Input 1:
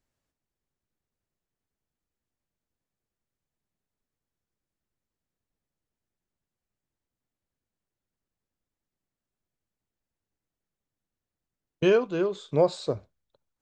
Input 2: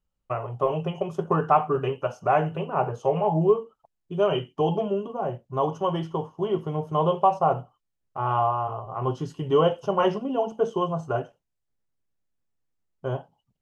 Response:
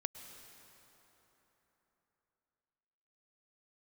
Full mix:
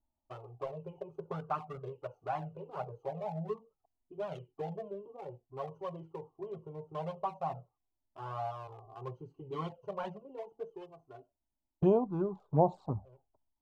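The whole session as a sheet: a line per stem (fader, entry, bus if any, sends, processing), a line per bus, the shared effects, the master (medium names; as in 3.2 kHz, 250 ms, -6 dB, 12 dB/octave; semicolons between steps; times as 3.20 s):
+1.5 dB, 0.00 s, no send, local Wiener filter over 15 samples; FFT filter 230 Hz 0 dB, 330 Hz -5 dB, 530 Hz -10 dB, 810 Hz +8 dB, 1.8 kHz -26 dB
-12.0 dB, 0.00 s, no send, local Wiener filter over 25 samples; auto duck -16 dB, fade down 1.65 s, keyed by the first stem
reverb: none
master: touch-sensitive flanger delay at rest 3.3 ms, full sweep at -22 dBFS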